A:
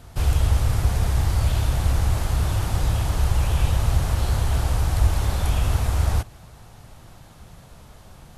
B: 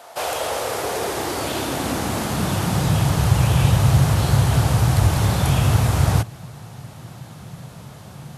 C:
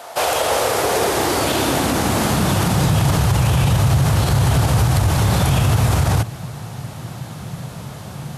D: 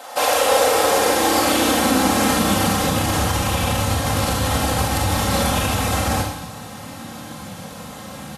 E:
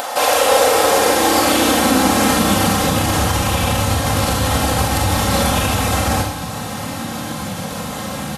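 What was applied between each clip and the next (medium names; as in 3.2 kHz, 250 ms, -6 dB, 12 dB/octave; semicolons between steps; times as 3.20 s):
high-pass sweep 660 Hz -> 130 Hz, 0.03–3.24 s; trim +6.5 dB
peak limiter -15 dBFS, peak gain reduction 10.5 dB; trim +7 dB
bass shelf 94 Hz -9.5 dB; comb 3.8 ms, depth 74%; Schroeder reverb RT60 0.78 s, combs from 27 ms, DRR 1 dB; trim -2.5 dB
upward compressor, threshold -20 dBFS; trim +3 dB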